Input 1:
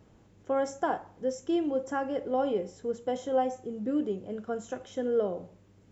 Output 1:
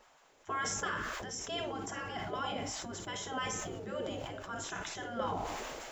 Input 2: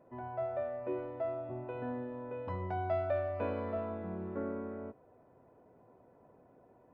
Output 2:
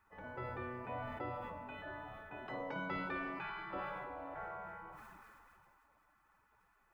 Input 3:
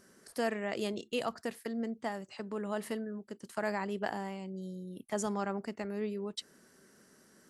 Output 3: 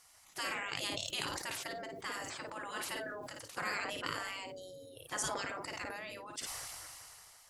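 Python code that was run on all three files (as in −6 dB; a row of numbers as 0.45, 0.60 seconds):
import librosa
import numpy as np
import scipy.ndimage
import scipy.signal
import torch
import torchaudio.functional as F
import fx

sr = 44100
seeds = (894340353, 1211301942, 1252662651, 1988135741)

y = fx.room_early_taps(x, sr, ms=(11, 54), db=(-14.5, -11.0))
y = fx.spec_gate(y, sr, threshold_db=-15, keep='weak')
y = fx.sustainer(y, sr, db_per_s=20.0)
y = F.gain(torch.from_numpy(y), 5.0).numpy()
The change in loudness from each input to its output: −6.5, −6.0, −2.5 LU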